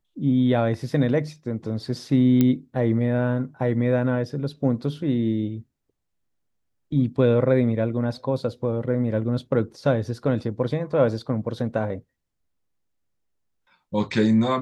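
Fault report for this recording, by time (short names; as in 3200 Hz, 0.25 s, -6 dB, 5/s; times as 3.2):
2.41 pop -8 dBFS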